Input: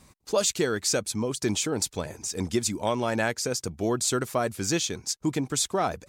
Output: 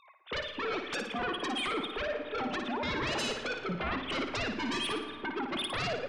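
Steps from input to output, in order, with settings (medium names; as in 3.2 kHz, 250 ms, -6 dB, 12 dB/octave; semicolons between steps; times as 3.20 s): formants replaced by sine waves; compression 16:1, threshold -30 dBFS, peak gain reduction 18.5 dB; sine folder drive 15 dB, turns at -22.5 dBFS; flutter echo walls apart 9.8 m, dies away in 0.51 s; on a send at -10.5 dB: reverberation RT60 4.2 s, pre-delay 20 ms; on the sum: trim -8.5 dB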